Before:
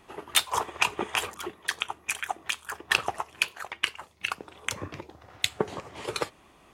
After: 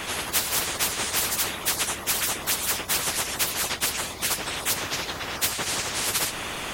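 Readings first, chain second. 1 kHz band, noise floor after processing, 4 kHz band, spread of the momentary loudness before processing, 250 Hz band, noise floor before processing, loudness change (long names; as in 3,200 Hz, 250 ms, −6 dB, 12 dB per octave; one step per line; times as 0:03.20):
+1.5 dB, −35 dBFS, +4.5 dB, 10 LU, +4.0 dB, −58 dBFS, +5.5 dB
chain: random phases in long frames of 50 ms
every bin compressed towards the loudest bin 10 to 1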